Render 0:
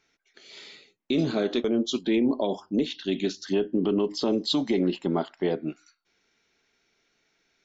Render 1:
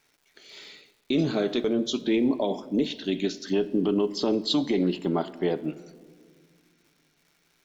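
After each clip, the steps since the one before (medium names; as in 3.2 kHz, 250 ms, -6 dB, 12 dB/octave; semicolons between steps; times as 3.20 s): crackle 350 per s -53 dBFS; simulated room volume 2700 m³, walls mixed, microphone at 0.41 m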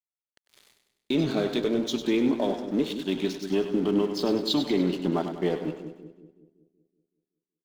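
crossover distortion -41.5 dBFS; two-band feedback delay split 410 Hz, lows 188 ms, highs 99 ms, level -9 dB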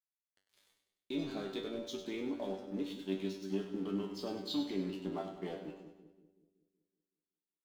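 feedback comb 96 Hz, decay 0.31 s, harmonics all, mix 90%; trim -4 dB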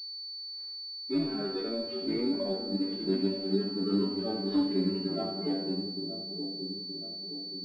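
harmonic-percussive separation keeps harmonic; feedback echo behind a low-pass 923 ms, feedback 50%, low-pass 470 Hz, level -5.5 dB; class-D stage that switches slowly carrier 4.5 kHz; trim +8.5 dB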